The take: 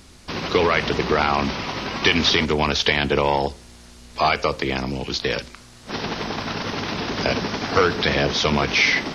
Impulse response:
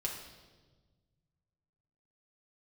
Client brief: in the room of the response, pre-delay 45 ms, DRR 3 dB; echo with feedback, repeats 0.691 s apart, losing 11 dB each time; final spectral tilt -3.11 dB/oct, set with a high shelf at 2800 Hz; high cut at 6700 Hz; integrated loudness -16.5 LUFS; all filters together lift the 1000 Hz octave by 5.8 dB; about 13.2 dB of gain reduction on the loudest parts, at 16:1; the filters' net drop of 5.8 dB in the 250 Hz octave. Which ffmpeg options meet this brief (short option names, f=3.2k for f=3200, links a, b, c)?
-filter_complex "[0:a]lowpass=6.7k,equalizer=f=250:t=o:g=-8.5,equalizer=f=1k:t=o:g=7,highshelf=f=2.8k:g=5.5,acompressor=threshold=-23dB:ratio=16,aecho=1:1:691|1382|2073:0.282|0.0789|0.0221,asplit=2[a][b];[1:a]atrim=start_sample=2205,adelay=45[c];[b][c]afir=irnorm=-1:irlink=0,volume=-5dB[d];[a][d]amix=inputs=2:normalize=0,volume=9dB"